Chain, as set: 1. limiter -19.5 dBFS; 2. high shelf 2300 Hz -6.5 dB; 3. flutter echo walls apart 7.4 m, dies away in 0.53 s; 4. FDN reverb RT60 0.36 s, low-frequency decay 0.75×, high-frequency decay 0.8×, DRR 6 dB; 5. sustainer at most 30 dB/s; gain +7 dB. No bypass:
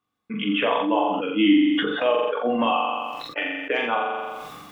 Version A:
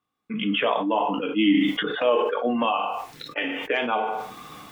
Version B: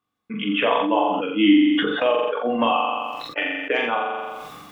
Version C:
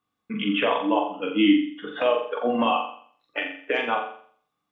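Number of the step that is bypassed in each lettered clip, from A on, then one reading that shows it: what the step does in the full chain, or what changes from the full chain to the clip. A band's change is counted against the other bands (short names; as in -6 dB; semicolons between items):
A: 3, 125 Hz band +2.5 dB; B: 1, loudness change +1.5 LU; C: 5, crest factor change +2.0 dB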